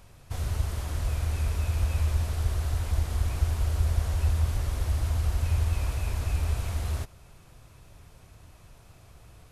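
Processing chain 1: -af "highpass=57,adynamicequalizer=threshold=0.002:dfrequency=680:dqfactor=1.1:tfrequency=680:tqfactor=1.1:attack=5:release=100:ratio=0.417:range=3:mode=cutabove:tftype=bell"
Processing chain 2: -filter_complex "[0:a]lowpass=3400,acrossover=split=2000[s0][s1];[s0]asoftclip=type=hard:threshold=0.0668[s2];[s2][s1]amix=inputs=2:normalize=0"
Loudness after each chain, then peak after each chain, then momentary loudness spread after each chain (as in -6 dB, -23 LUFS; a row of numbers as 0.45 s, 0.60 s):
-30.5 LUFS, -30.5 LUFS; -15.0 dBFS, -22.5 dBFS; 5 LU, 3 LU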